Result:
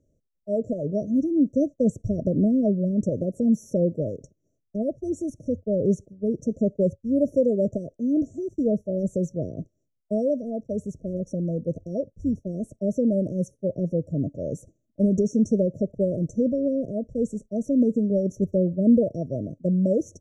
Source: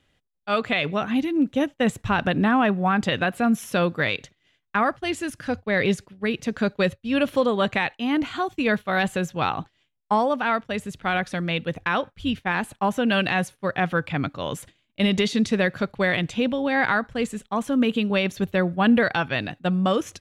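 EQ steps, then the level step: brick-wall FIR band-stop 670–5500 Hz; distance through air 92 m; +1.0 dB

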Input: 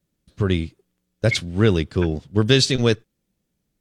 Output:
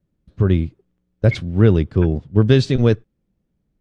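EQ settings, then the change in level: low-pass 1.1 kHz 6 dB/octave; bass shelf 150 Hz +6 dB; +2.0 dB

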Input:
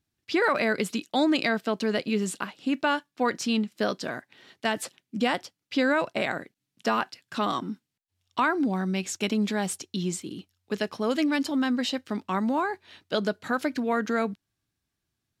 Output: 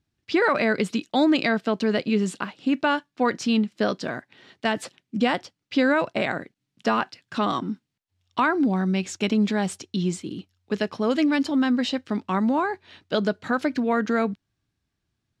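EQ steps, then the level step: distance through air 57 m; bass shelf 240 Hz +4 dB; +2.5 dB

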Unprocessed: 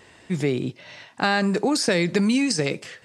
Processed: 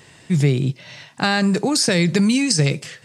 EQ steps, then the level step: peaking EQ 140 Hz +13 dB 0.76 oct; treble shelf 3.2 kHz +8.5 dB; 0.0 dB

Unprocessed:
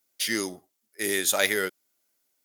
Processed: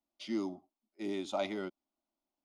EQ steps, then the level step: tape spacing loss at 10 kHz 39 dB; static phaser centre 460 Hz, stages 6; 0.0 dB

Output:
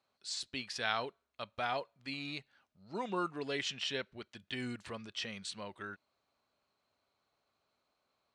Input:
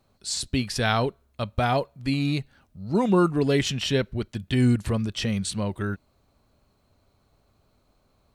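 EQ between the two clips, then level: high-pass 1.3 kHz 6 dB/octave; distance through air 91 m; -5.5 dB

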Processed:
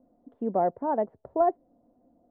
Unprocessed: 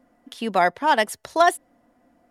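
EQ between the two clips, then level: four-pole ladder low-pass 810 Hz, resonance 20%; +2.0 dB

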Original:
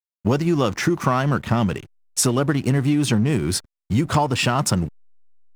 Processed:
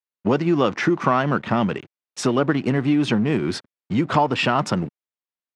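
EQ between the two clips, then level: band-pass 190–3400 Hz; +2.0 dB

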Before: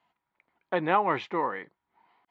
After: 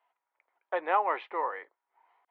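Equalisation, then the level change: high-pass 470 Hz 24 dB/octave; distance through air 390 m; 0.0 dB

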